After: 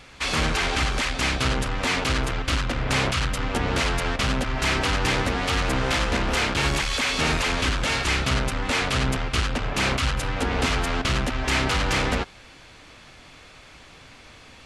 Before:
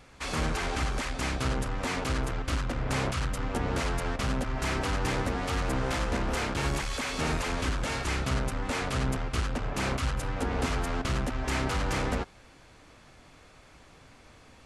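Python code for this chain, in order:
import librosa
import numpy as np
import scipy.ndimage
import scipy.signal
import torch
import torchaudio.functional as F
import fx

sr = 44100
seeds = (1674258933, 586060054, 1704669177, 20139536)

y = fx.peak_eq(x, sr, hz=3200.0, db=7.5, octaves=1.9)
y = y * 10.0 ** (4.5 / 20.0)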